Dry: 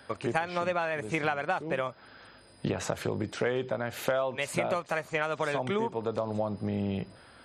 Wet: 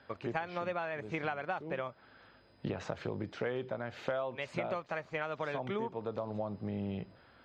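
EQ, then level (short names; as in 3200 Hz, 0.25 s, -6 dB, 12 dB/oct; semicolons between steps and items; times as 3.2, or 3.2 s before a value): air absorption 200 m; bell 5800 Hz +3.5 dB 1.5 oct; -6.0 dB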